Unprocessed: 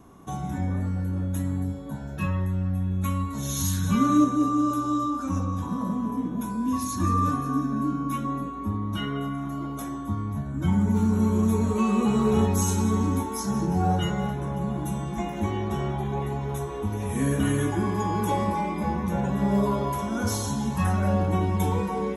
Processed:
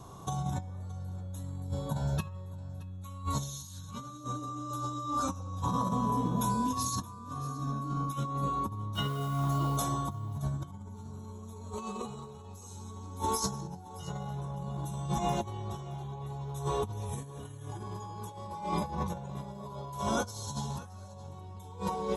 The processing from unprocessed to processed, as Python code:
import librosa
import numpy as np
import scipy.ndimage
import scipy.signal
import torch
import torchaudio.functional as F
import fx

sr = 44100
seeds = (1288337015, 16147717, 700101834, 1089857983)

p1 = fx.graphic_eq(x, sr, hz=(125, 250, 500, 1000, 2000, 4000, 8000), db=(11, -9, 4, 7, -9, 11, 7))
p2 = fx.over_compress(p1, sr, threshold_db=-28.0, ratio=-0.5)
p3 = fx.quant_dither(p2, sr, seeds[0], bits=8, dither='triangular', at=(8.94, 9.76), fade=0.02)
p4 = p3 + fx.echo_single(p3, sr, ms=622, db=-19.0, dry=0)
y = F.gain(torch.from_numpy(p4), -6.5).numpy()